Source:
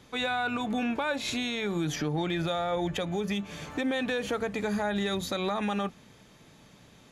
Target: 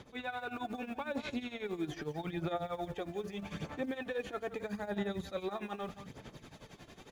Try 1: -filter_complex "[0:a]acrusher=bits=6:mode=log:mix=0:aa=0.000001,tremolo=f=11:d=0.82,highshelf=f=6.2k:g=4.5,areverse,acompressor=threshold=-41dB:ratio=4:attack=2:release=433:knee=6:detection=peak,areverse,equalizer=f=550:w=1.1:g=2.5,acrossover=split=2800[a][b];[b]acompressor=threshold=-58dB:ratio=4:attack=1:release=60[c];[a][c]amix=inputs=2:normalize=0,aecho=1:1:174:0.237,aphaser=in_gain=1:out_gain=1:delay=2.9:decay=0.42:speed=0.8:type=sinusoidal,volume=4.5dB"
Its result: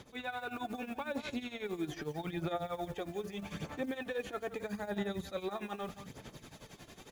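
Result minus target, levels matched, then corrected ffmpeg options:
8000 Hz band +4.0 dB
-filter_complex "[0:a]acrusher=bits=6:mode=log:mix=0:aa=0.000001,tremolo=f=11:d=0.82,highshelf=f=6.2k:g=-6,areverse,acompressor=threshold=-41dB:ratio=4:attack=2:release=433:knee=6:detection=peak,areverse,equalizer=f=550:w=1.1:g=2.5,acrossover=split=2800[a][b];[b]acompressor=threshold=-58dB:ratio=4:attack=1:release=60[c];[a][c]amix=inputs=2:normalize=0,aecho=1:1:174:0.237,aphaser=in_gain=1:out_gain=1:delay=2.9:decay=0.42:speed=0.8:type=sinusoidal,volume=4.5dB"

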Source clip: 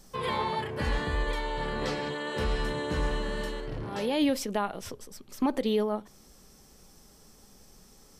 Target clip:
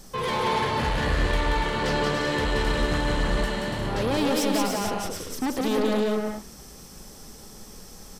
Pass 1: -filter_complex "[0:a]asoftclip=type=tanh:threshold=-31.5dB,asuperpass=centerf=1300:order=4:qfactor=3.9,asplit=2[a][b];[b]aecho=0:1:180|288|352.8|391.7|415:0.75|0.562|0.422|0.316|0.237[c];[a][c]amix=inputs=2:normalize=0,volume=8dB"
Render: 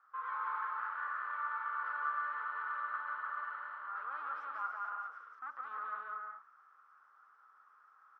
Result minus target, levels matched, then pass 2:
1000 Hz band +5.5 dB
-filter_complex "[0:a]asoftclip=type=tanh:threshold=-31.5dB,asplit=2[a][b];[b]aecho=0:1:180|288|352.8|391.7|415:0.75|0.562|0.422|0.316|0.237[c];[a][c]amix=inputs=2:normalize=0,volume=8dB"

